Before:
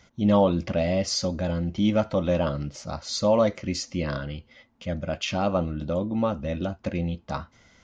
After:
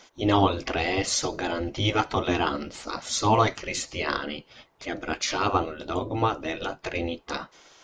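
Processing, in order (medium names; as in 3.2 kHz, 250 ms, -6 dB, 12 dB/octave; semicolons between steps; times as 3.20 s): spectral gate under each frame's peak -10 dB weak; trim +8.5 dB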